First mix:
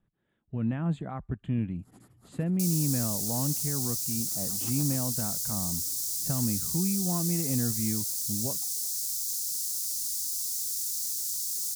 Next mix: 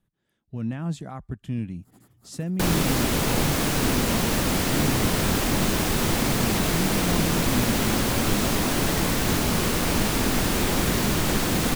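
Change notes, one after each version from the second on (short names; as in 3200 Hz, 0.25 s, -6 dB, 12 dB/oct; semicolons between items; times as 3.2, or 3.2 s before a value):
speech: remove running mean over 8 samples; first sound: remove brick-wall FIR low-pass 12000 Hz; second sound: remove inverse Chebyshev high-pass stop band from 2800 Hz, stop band 40 dB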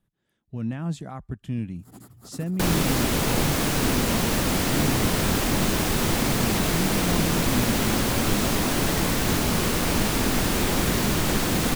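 first sound +9.5 dB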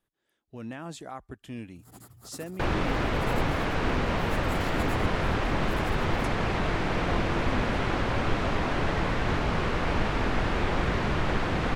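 speech: add resonant low shelf 210 Hz -8.5 dB, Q 1.5; second sound: add LPF 2200 Hz 12 dB/oct; master: add bell 230 Hz -7.5 dB 1.5 oct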